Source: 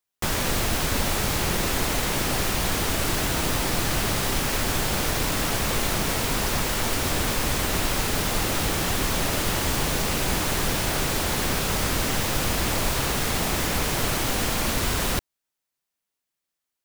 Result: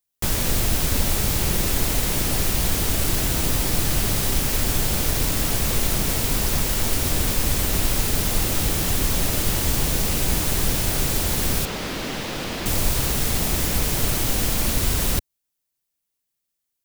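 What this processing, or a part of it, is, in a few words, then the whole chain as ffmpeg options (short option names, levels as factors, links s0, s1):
smiley-face EQ: -filter_complex "[0:a]lowshelf=f=120:g=6.5,equalizer=f=1200:t=o:w=2:g=-4.5,highshelf=f=8300:g=7,asettb=1/sr,asplit=3[s0][s1][s2];[s0]atrim=end=11.654[s3];[s1]atrim=start=11.65:end=12.66,asetpts=PTS-STARTPTS,afade=t=in:d=0.004:c=qsin,afade=t=out:st=1.006:d=0.004:c=qsin,acrossover=split=170 4900:gain=0.178 1 0.158[s4][s5][s6];[s4][s5][s6]amix=inputs=3:normalize=0[s7];[s2]atrim=start=12.656[s8];[s3][s7]acrossfade=d=0.004:c1=hsin:c2=qsin[s9];[s9][s8]acrossfade=d=0.004:c1=qsin:c2=hsin"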